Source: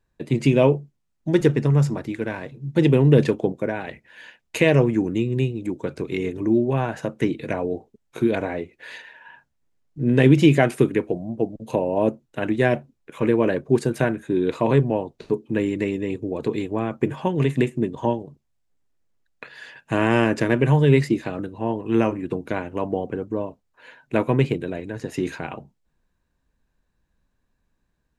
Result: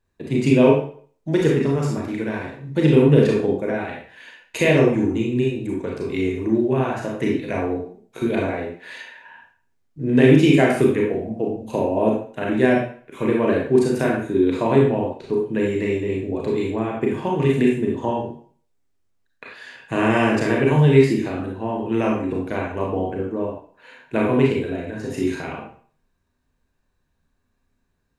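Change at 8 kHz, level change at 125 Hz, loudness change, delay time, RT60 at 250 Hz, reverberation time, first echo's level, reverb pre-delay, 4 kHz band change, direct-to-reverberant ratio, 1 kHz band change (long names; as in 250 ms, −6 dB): can't be measured, −0.5 dB, +2.0 dB, no echo audible, 0.45 s, 0.45 s, no echo audible, 30 ms, +2.0 dB, −2.5 dB, +2.0 dB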